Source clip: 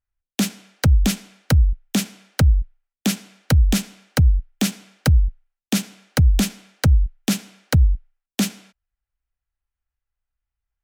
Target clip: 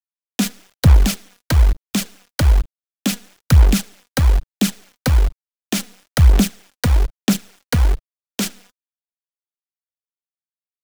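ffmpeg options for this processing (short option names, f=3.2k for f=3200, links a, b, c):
-af "acrusher=bits=5:dc=4:mix=0:aa=0.000001,aphaser=in_gain=1:out_gain=1:delay=4.2:decay=0.43:speed=1.1:type=sinusoidal"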